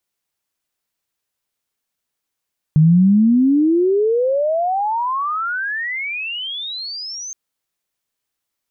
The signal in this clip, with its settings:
glide logarithmic 150 Hz → 6,400 Hz −7.5 dBFS → −27 dBFS 4.57 s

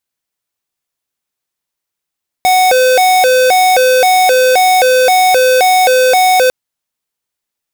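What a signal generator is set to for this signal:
siren hi-lo 510–741 Hz 1.9 per second square −8.5 dBFS 4.05 s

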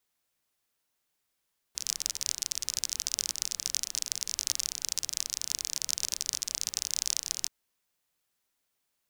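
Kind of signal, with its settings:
rain-like ticks over hiss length 5.73 s, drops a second 34, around 5,800 Hz, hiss −21.5 dB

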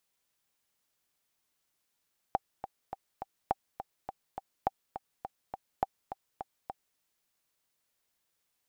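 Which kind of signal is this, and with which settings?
click track 207 BPM, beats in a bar 4, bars 4, 779 Hz, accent 11 dB −13.5 dBFS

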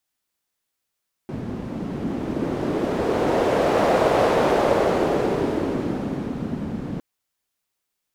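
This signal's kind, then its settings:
wind from filtered noise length 5.71 s, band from 210 Hz, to 570 Hz, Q 1.7, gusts 1, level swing 11 dB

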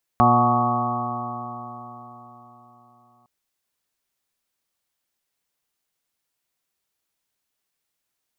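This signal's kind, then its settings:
stiff-string partials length 3.06 s, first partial 119 Hz, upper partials 1.5/−7.5/−15.5/−7/4/−1/−10/5/−5 dB, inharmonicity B 0.0011, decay 4.05 s, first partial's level −21 dB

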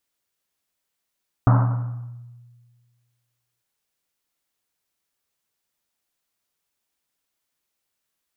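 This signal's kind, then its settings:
drum after Risset length 2.15 s, pitch 120 Hz, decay 1.74 s, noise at 960 Hz, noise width 830 Hz, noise 20%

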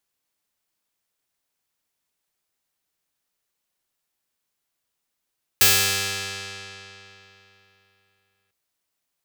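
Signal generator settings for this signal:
Karplus-Strong string G2, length 2.90 s, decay 3.32 s, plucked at 0.32, bright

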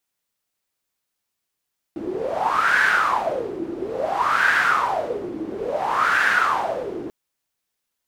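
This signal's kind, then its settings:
wind from filtered noise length 5.14 s, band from 330 Hz, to 1,600 Hz, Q 7.9, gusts 3, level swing 12 dB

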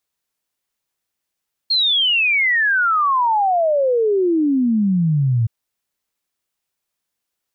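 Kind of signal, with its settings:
exponential sine sweep 4,300 Hz → 110 Hz 3.77 s −13.5 dBFS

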